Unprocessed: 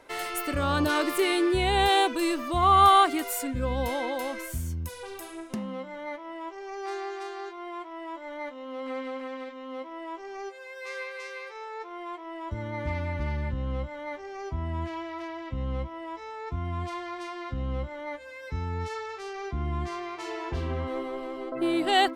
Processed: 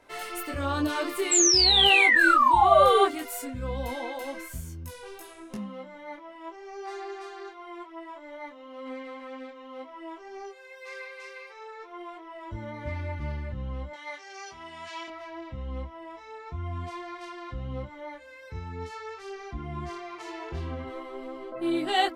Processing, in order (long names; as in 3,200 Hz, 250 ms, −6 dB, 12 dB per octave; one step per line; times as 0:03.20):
0:01.31–0:03.06: sound drawn into the spectrogram fall 370–7,800 Hz −16 dBFS
0:13.93–0:15.08: meter weighting curve ITU-R 468
micro pitch shift up and down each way 14 cents